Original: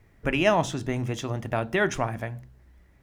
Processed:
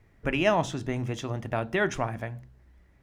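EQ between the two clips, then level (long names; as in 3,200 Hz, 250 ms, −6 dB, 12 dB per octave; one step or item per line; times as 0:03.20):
high-shelf EQ 8,900 Hz −6.5 dB
−2.0 dB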